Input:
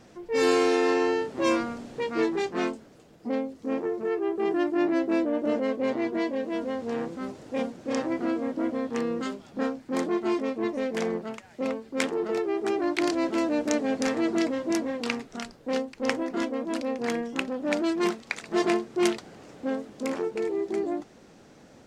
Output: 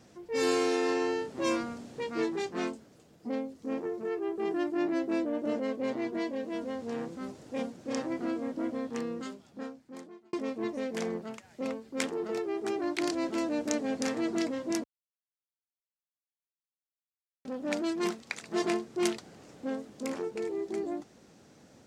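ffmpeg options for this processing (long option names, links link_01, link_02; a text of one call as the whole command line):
ffmpeg -i in.wav -filter_complex "[0:a]asplit=4[link_01][link_02][link_03][link_04];[link_01]atrim=end=10.33,asetpts=PTS-STARTPTS,afade=type=out:start_time=8.81:duration=1.52[link_05];[link_02]atrim=start=10.33:end=14.84,asetpts=PTS-STARTPTS,afade=type=in:duration=0.004:curve=hsin,afade=type=out:start_time=4.506:duration=0.004:curve=hsin[link_06];[link_03]atrim=start=14.84:end=17.45,asetpts=PTS-STARTPTS,volume=0[link_07];[link_04]atrim=start=17.45,asetpts=PTS-STARTPTS,afade=type=in:duration=0.004:curve=hsin[link_08];[link_05][link_06][link_07][link_08]concat=n=4:v=0:a=1,highpass=55,bass=frequency=250:gain=3,treble=frequency=4000:gain=5,volume=-6dB" out.wav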